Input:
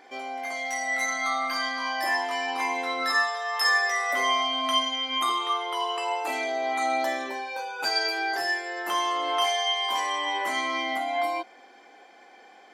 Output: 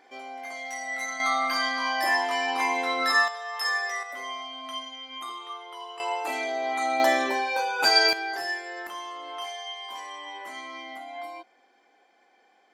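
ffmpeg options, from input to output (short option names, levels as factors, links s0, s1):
-af "asetnsamples=n=441:p=0,asendcmd='1.2 volume volume 2dB;3.28 volume volume -5dB;4.03 volume volume -11.5dB;6 volume volume -1dB;7 volume volume 6.5dB;8.13 volume volume -3.5dB;8.87 volume volume -11dB',volume=0.562"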